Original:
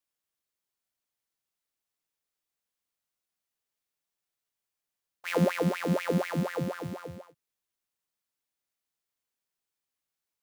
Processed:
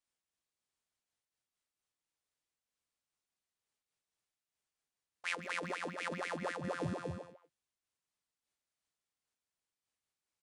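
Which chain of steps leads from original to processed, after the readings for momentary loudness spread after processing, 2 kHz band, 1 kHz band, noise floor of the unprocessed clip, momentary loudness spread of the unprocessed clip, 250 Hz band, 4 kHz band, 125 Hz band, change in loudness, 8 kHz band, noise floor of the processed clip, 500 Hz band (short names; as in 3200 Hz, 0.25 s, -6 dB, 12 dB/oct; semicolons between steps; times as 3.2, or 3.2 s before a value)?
6 LU, -3.0 dB, -5.0 dB, under -85 dBFS, 15 LU, -14.0 dB, -4.5 dB, -13.5 dB, -10.0 dB, -6.0 dB, under -85 dBFS, -11.5 dB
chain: downsampling 22050 Hz; bell 77 Hz +4 dB 2 oct; negative-ratio compressor -33 dBFS, ratio -1; speakerphone echo 0.15 s, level -8 dB; noise-modulated level, depth 60%; gain -4 dB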